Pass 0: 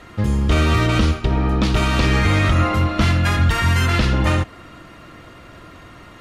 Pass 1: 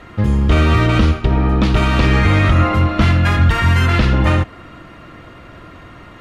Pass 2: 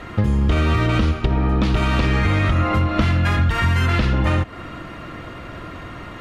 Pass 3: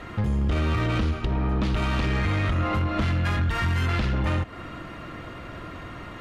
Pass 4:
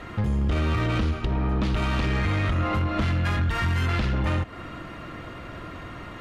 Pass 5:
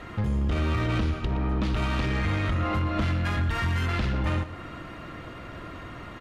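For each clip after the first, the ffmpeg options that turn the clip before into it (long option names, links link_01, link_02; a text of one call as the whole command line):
ffmpeg -i in.wav -af "bass=frequency=250:gain=1,treble=frequency=4000:gain=-8,volume=3dB" out.wav
ffmpeg -i in.wav -af "acompressor=threshold=-19dB:ratio=6,volume=4dB" out.wav
ffmpeg -i in.wav -af "asoftclip=type=tanh:threshold=-14dB,volume=-4dB" out.wav
ffmpeg -i in.wav -af anull out.wav
ffmpeg -i in.wav -af "aecho=1:1:119:0.211,volume=-2dB" out.wav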